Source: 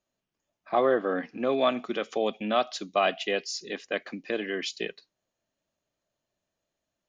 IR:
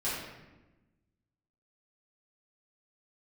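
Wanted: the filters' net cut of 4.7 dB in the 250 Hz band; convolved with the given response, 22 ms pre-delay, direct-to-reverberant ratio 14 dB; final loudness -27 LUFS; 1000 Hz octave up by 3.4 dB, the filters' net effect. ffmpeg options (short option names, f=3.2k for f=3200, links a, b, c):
-filter_complex "[0:a]equalizer=f=250:t=o:g=-6.5,equalizer=f=1k:t=o:g=5.5,asplit=2[a][b];[1:a]atrim=start_sample=2205,adelay=22[c];[b][c]afir=irnorm=-1:irlink=0,volume=-21dB[d];[a][d]amix=inputs=2:normalize=0,volume=0.5dB"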